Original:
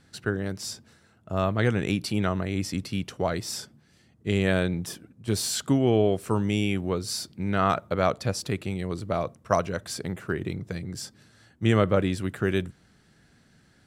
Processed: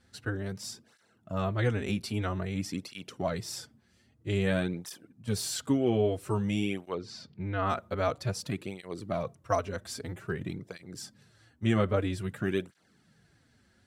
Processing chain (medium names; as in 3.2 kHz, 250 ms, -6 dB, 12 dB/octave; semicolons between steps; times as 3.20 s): 6.95–7.67 s: distance through air 170 m; cancelling through-zero flanger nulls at 0.51 Hz, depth 7.1 ms; trim -2.5 dB